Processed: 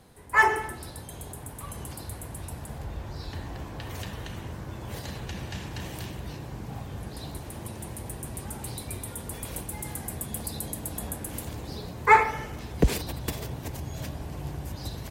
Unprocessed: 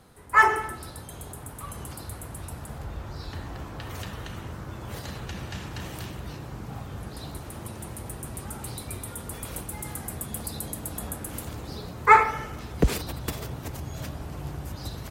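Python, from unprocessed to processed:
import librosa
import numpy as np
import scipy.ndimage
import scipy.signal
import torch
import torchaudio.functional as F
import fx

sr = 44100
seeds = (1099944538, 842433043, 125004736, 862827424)

y = fx.peak_eq(x, sr, hz=1300.0, db=-7.5, octaves=0.28)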